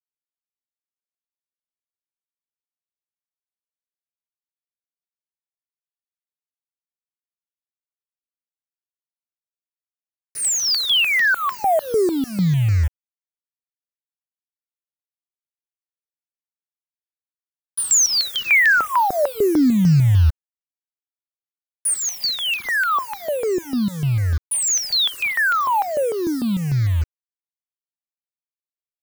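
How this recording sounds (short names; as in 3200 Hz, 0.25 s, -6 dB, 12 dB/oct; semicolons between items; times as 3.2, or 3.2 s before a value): a quantiser's noise floor 6-bit, dither none; notches that jump at a steady rate 6.7 Hz 760–3400 Hz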